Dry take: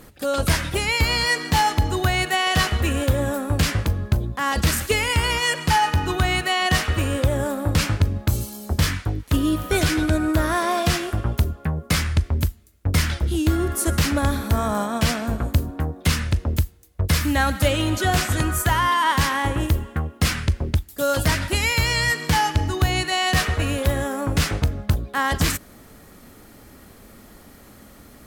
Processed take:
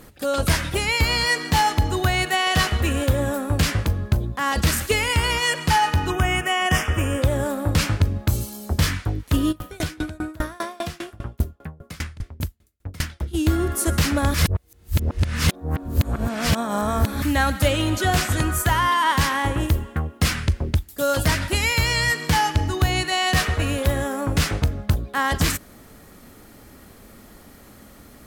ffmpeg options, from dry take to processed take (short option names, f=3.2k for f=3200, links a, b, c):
-filter_complex "[0:a]asettb=1/sr,asplit=3[a][b][c];[a]atrim=end=6.104[d];[b]atrim=start=6.1:end=7.22,asetpts=PTS-STARTPTS,afade=t=in:d=0.004:c=qsin,afade=t=out:st=1.116:d=0.004:c=qsin,asuperstop=centerf=4100:order=4:qfactor=2.1[e];[c]atrim=start=7.216[f];[d][e]acrossfade=d=0.004:c1=hsin:c2=qsin[g];[g][f]acrossfade=d=0.004:c1=qsin:c2=hsin,asplit=3[h][i][j];[h]afade=t=out:st=9.51:d=0.02[k];[i]aeval=exprs='val(0)*pow(10,-28*if(lt(mod(5*n/s,1),2*abs(5)/1000),1-mod(5*n/s,1)/(2*abs(5)/1000),(mod(5*n/s,1)-2*abs(5)/1000)/(1-2*abs(5)/1000))/20)':c=same,afade=t=in:st=9.51:d=0.02,afade=t=out:st=13.33:d=0.02[l];[j]afade=t=in:st=13.33:d=0.02[m];[k][l][m]amix=inputs=3:normalize=0,asplit=3[n][o][p];[n]atrim=end=14.342[q];[o]atrim=start=14.338:end=17.222,asetpts=PTS-STARTPTS,areverse[r];[p]atrim=start=17.218[s];[q][r]acrossfade=d=0.004:c1=hsin:c2=hsin[t];[t][s]acrossfade=d=0.004:c1=hsin:c2=hsin"